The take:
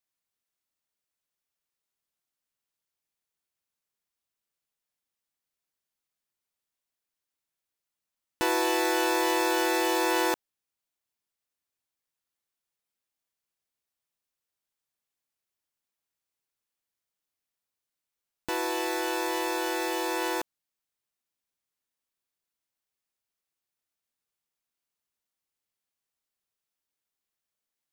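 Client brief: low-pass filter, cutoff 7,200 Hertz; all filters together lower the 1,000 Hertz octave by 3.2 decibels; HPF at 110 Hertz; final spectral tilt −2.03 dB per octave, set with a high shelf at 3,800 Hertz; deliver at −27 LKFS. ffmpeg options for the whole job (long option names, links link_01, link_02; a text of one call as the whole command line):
ffmpeg -i in.wav -af "highpass=110,lowpass=7200,equalizer=frequency=1000:width_type=o:gain=-3.5,highshelf=frequency=3800:gain=-5,volume=2.5dB" out.wav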